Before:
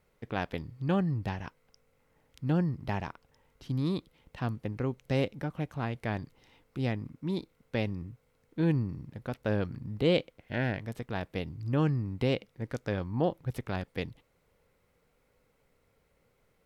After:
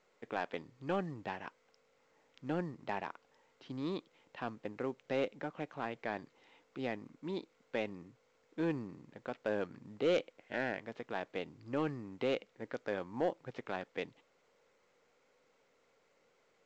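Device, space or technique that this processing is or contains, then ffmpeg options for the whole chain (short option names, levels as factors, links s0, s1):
telephone: -af "highpass=330,lowpass=3400,asoftclip=type=tanh:threshold=0.0841,volume=0.891" -ar 16000 -c:a pcm_mulaw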